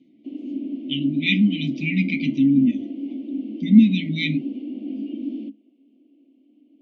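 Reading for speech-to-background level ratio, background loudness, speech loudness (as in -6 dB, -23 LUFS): 11.0 dB, -31.0 LUFS, -20.0 LUFS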